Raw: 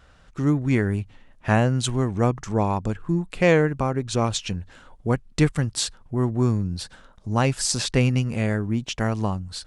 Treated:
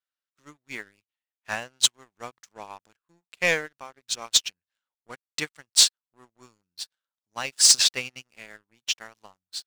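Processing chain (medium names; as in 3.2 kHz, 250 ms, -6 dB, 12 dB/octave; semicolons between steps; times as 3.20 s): band-pass filter 4.7 kHz, Q 0.64; waveshaping leveller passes 3; upward expansion 2.5:1, over -33 dBFS; trim +2 dB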